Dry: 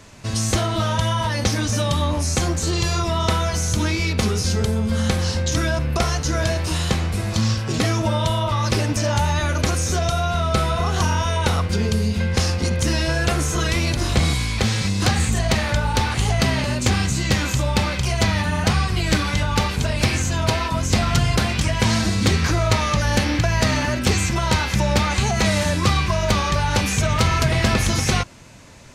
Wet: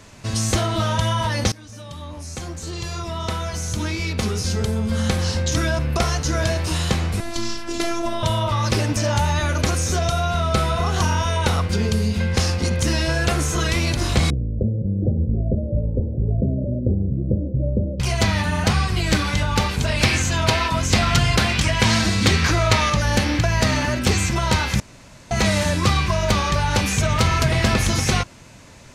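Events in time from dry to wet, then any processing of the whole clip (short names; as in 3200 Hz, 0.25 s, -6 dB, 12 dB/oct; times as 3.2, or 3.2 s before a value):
1.52–5.36 fade in, from -22 dB
7.2–8.23 robotiser 339 Hz
14.3–18 steep low-pass 600 Hz 72 dB/oct
19.87–22.9 bell 2500 Hz +4.5 dB 2.6 oct
24.8–25.31 room tone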